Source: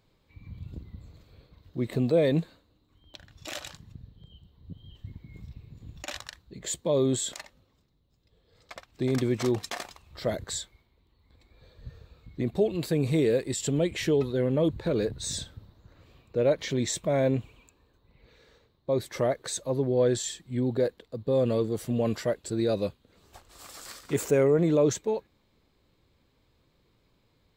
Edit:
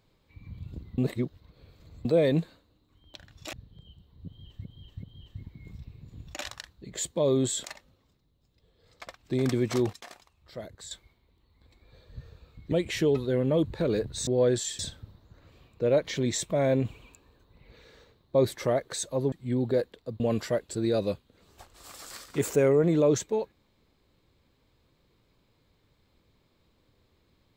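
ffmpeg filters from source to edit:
-filter_complex "[0:a]asplit=15[s0][s1][s2][s3][s4][s5][s6][s7][s8][s9][s10][s11][s12][s13][s14];[s0]atrim=end=0.982[s15];[s1]atrim=start=0.978:end=2.052,asetpts=PTS-STARTPTS,areverse[s16];[s2]atrim=start=2.048:end=3.532[s17];[s3]atrim=start=3.978:end=5.102[s18];[s4]atrim=start=4.718:end=5.102[s19];[s5]atrim=start=4.718:end=9.622[s20];[s6]atrim=start=9.618:end=10.602,asetpts=PTS-STARTPTS,volume=0.282[s21];[s7]atrim=start=10.598:end=12.412[s22];[s8]atrim=start=13.778:end=15.332[s23];[s9]atrim=start=19.858:end=20.382[s24];[s10]atrim=start=15.328:end=17.392[s25];[s11]atrim=start=17.388:end=19.102,asetpts=PTS-STARTPTS,volume=1.58[s26];[s12]atrim=start=19.098:end=19.862[s27];[s13]atrim=start=20.378:end=21.262[s28];[s14]atrim=start=21.948[s29];[s15][s16]acrossfade=d=0.004:c1=hsin:c2=hsin[s30];[s30][s17]acrossfade=d=0.004:c1=hsin:c2=hsin[s31];[s31][s18]acrossfade=d=0.004:c1=hsin:c2=hsin[s32];[s32][s19]acrossfade=d=0.004:c1=hsin:c2=hsin[s33];[s33][s20]acrossfade=d=0.004:c1=hsin:c2=hsin[s34];[s34][s21]acrossfade=d=0.004:c1=hsin:c2=hsin[s35];[s35][s22]acrossfade=d=0.004:c1=hsin:c2=hsin[s36];[s36][s23]acrossfade=d=0.004:c1=hsin:c2=hsin[s37];[s37][s24]acrossfade=d=0.004:c1=hsin:c2=hsin[s38];[s38][s25]acrossfade=d=0.004:c1=hsin:c2=hsin[s39];[s39][s26]acrossfade=d=0.004:c1=hsin:c2=hsin[s40];[s40][s27]acrossfade=d=0.004:c1=hsin:c2=hsin[s41];[s41][s28]acrossfade=d=0.004:c1=hsin:c2=hsin[s42];[s42][s29]acrossfade=d=0.004:c1=hsin:c2=hsin"

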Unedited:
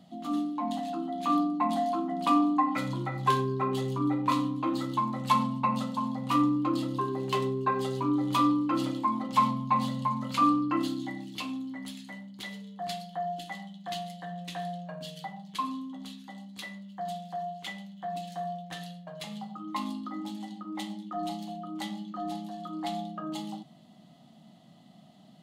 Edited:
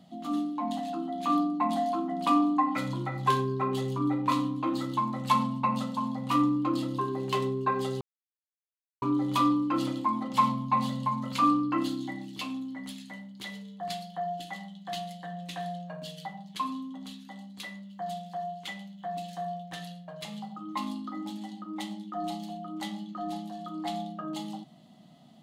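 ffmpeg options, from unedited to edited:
-filter_complex "[0:a]asplit=2[s0][s1];[s0]atrim=end=8.01,asetpts=PTS-STARTPTS,afade=t=out:st=8.006:d=0.004:c=hsin,apad=pad_dur=1.01[s2];[s1]atrim=start=8.01,asetpts=PTS-STARTPTS,afade=t=in:d=0.004:c=hsin[s3];[s2][s3]concat=n=2:v=0:a=1"

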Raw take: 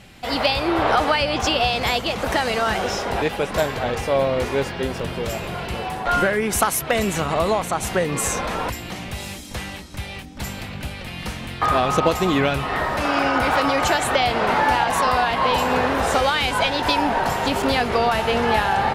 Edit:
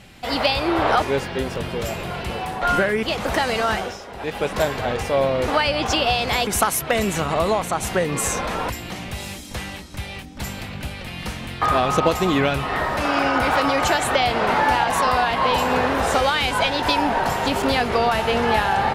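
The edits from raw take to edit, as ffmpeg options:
-filter_complex "[0:a]asplit=7[s0][s1][s2][s3][s4][s5][s6];[s0]atrim=end=1.022[s7];[s1]atrim=start=4.458:end=6.472[s8];[s2]atrim=start=2.008:end=2.95,asetpts=PTS-STARTPTS,afade=t=out:st=0.692:d=0.25:silence=0.251189[s9];[s3]atrim=start=2.95:end=3.16,asetpts=PTS-STARTPTS,volume=0.251[s10];[s4]atrim=start=3.16:end=4.462,asetpts=PTS-STARTPTS,afade=t=in:d=0.25:silence=0.251189[s11];[s5]atrim=start=1.018:end=2.012[s12];[s6]atrim=start=6.468[s13];[s7][s8]acrossfade=d=0.004:c1=hsin:c2=hsin[s14];[s9][s10][s11]concat=n=3:v=0:a=1[s15];[s14][s15]acrossfade=d=0.004:c1=hsin:c2=hsin[s16];[s16][s12]acrossfade=d=0.004:c1=hsin:c2=hsin[s17];[s17][s13]acrossfade=d=0.004:c1=hsin:c2=hsin"

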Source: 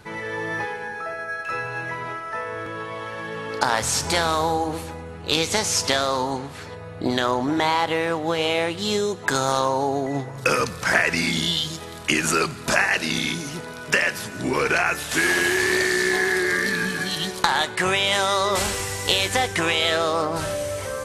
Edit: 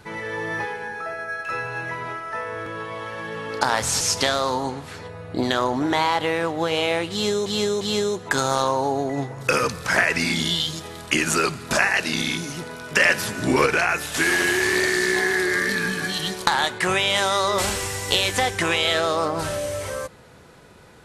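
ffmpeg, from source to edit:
-filter_complex "[0:a]asplit=6[s0][s1][s2][s3][s4][s5];[s0]atrim=end=4.012[s6];[s1]atrim=start=5.678:end=9.132[s7];[s2]atrim=start=8.778:end=9.132[s8];[s3]atrim=start=8.778:end=13.972[s9];[s4]atrim=start=13.968:end=14.632,asetpts=PTS-STARTPTS,volume=1.68[s10];[s5]atrim=start=14.628[s11];[s6][s7]acrossfade=d=0.004:c1=hsin:c2=hsin[s12];[s12][s8]acrossfade=d=0.004:c1=hsin:c2=hsin[s13];[s13][s9]acrossfade=d=0.004:c1=hsin:c2=hsin[s14];[s14][s10]acrossfade=d=0.004:c1=hsin:c2=hsin[s15];[s15][s11]acrossfade=d=0.004:c1=hsin:c2=hsin"

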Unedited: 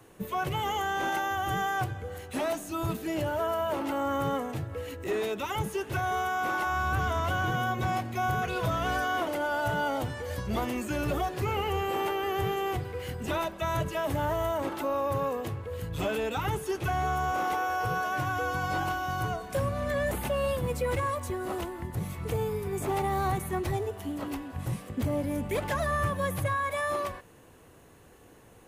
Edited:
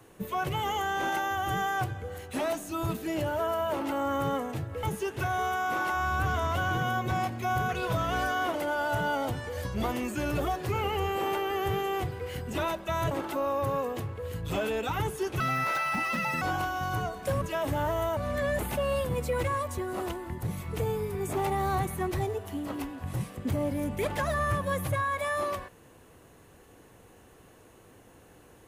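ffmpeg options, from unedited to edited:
-filter_complex "[0:a]asplit=7[s0][s1][s2][s3][s4][s5][s6];[s0]atrim=end=4.832[s7];[s1]atrim=start=5.558:end=13.842[s8];[s2]atrim=start=14.588:end=16.884[s9];[s3]atrim=start=16.88:end=18.69,asetpts=PTS-STARTPTS,asetrate=78498,aresample=44100,atrim=end_sample=44843,asetpts=PTS-STARTPTS[s10];[s4]atrim=start=18.686:end=19.692[s11];[s5]atrim=start=13.838:end=14.592[s12];[s6]atrim=start=19.688[s13];[s7][s8]acrossfade=d=0.004:c1=hsin:c2=hsin[s14];[s14][s9]acrossfade=d=0.004:c1=hsin:c2=hsin[s15];[s15][s10]acrossfade=d=0.004:c1=hsin:c2=hsin[s16];[s16][s11]acrossfade=d=0.004:c1=hsin:c2=hsin[s17];[s17][s12]acrossfade=d=0.004:c1=hsin:c2=hsin[s18];[s18][s13]acrossfade=d=0.004:c1=hsin:c2=hsin"

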